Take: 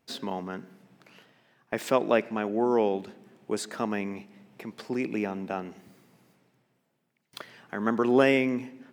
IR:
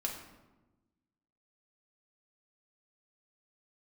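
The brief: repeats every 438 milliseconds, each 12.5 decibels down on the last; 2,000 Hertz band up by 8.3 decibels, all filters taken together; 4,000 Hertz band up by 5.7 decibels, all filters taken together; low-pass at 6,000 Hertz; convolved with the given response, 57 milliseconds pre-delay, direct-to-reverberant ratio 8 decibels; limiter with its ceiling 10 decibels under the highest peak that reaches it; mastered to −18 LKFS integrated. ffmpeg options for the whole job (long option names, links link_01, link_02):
-filter_complex "[0:a]lowpass=6000,equalizer=frequency=2000:width_type=o:gain=9,equalizer=frequency=4000:width_type=o:gain=4.5,alimiter=limit=-14.5dB:level=0:latency=1,aecho=1:1:438|876|1314:0.237|0.0569|0.0137,asplit=2[link_01][link_02];[1:a]atrim=start_sample=2205,adelay=57[link_03];[link_02][link_03]afir=irnorm=-1:irlink=0,volume=-10dB[link_04];[link_01][link_04]amix=inputs=2:normalize=0,volume=11dB"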